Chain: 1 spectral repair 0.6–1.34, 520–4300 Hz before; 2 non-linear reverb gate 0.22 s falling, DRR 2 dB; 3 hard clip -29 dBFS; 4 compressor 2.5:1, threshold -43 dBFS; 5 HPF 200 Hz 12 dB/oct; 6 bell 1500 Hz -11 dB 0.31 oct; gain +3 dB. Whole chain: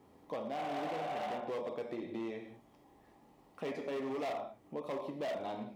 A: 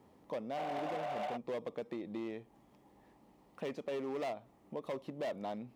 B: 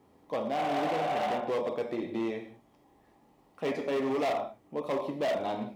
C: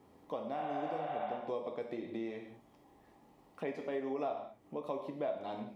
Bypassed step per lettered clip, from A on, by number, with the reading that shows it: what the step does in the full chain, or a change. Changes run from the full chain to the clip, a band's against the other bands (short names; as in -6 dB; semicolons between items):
2, loudness change -1.0 LU; 4, mean gain reduction 5.5 dB; 3, distortion -7 dB